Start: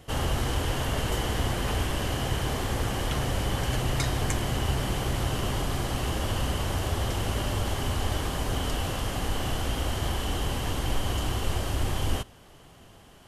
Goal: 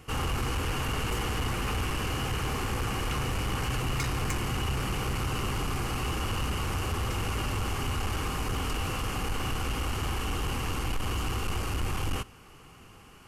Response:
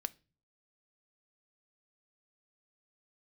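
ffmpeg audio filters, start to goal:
-af "superequalizer=8b=0.447:10b=1.78:12b=1.78:13b=0.562,asoftclip=type=tanh:threshold=-24dB"

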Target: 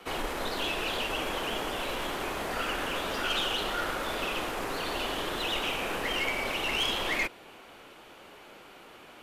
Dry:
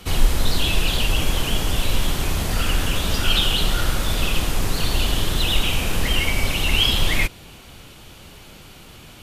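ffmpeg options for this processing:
-filter_complex "[0:a]acrossover=split=290 2400:gain=0.0708 1 0.224[a][b][c];[a][b][c]amix=inputs=3:normalize=0,aeval=exprs='(tanh(12.6*val(0)+0.35)-tanh(0.35))/12.6':c=same"

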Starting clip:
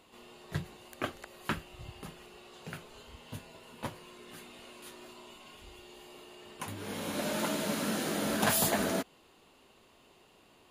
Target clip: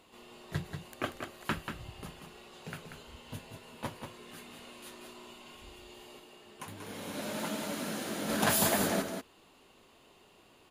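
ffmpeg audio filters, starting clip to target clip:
-filter_complex "[0:a]asplit=3[a][b][c];[a]afade=t=out:st=6.18:d=0.02[d];[b]flanger=delay=1.2:depth=8.5:regen=71:speed=1.3:shape=triangular,afade=t=in:st=6.18:d=0.02,afade=t=out:st=8.28:d=0.02[e];[c]afade=t=in:st=8.28:d=0.02[f];[d][e][f]amix=inputs=3:normalize=0,aecho=1:1:187:0.447"

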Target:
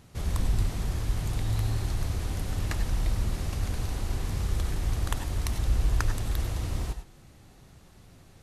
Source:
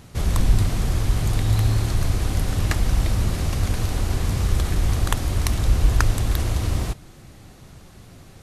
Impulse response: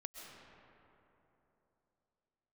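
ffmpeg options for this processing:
-filter_complex "[1:a]atrim=start_sample=2205,afade=t=out:st=0.2:d=0.01,atrim=end_sample=9261,asetrate=61740,aresample=44100[a];[0:a][a]afir=irnorm=-1:irlink=0"

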